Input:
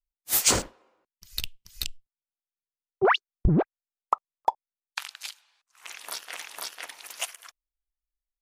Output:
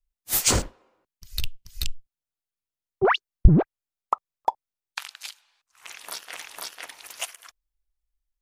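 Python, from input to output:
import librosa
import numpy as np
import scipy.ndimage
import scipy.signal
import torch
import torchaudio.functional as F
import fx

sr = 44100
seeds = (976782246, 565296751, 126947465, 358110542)

y = fx.low_shelf(x, sr, hz=140.0, db=11.5)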